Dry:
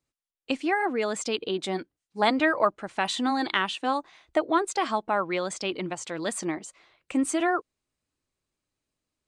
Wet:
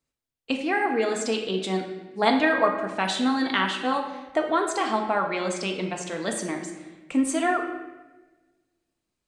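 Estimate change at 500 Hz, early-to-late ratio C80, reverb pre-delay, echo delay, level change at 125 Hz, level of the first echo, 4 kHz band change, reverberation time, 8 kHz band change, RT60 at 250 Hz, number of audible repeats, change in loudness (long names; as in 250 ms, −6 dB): +2.0 dB, 8.0 dB, 4 ms, no echo audible, +4.5 dB, no echo audible, +1.5 dB, 1.2 s, +1.0 dB, 1.5 s, no echo audible, +2.0 dB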